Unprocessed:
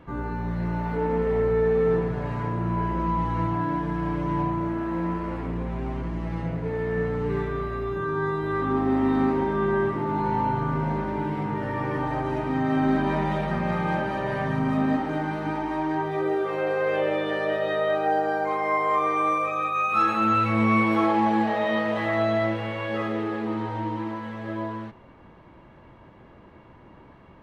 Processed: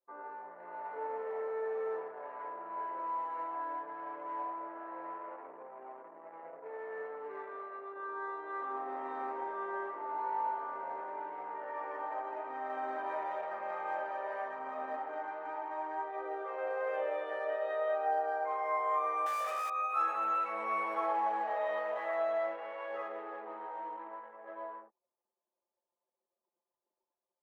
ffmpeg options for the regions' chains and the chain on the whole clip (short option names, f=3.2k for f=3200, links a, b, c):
-filter_complex "[0:a]asettb=1/sr,asplit=3[a][b][c];[a]atrim=end=19.264[d];[b]atrim=start=19.26:end=19.7,asetpts=PTS-STARTPTS,afade=t=in:d=0.004:c=qsin,afade=t=out:st=0.436:d=0.004:c=qsin,asplit=2[e][f];[f]highpass=f=720:p=1,volume=20dB,asoftclip=type=tanh:threshold=-14dB[g];[e][g]amix=inputs=2:normalize=0,lowpass=f=5.4k:p=1,volume=-6dB,aeval=exprs='max(val(0),0)':c=same,aeval=exprs='val(0)+0.00708*(sin(2*PI*50*n/s)+sin(2*PI*2*50*n/s)/2+sin(2*PI*3*50*n/s)/3+sin(2*PI*4*50*n/s)/4+sin(2*PI*5*50*n/s)/5)':c=same[h];[c]atrim=start=19.696[i];[d][h]acrossfade=d=0.004:c1=hsin:c2=qsin[j];[j][i]acrossfade=d=0.004:c1=qsin:c2=hsin,anlmdn=6.31,highpass=f=550:w=0.5412,highpass=f=550:w=1.3066,equalizer=f=3.9k:t=o:w=1.9:g=-14.5,volume=-5.5dB"